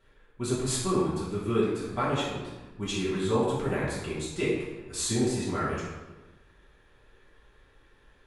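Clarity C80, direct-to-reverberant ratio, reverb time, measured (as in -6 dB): 3.0 dB, -9.0 dB, 1.2 s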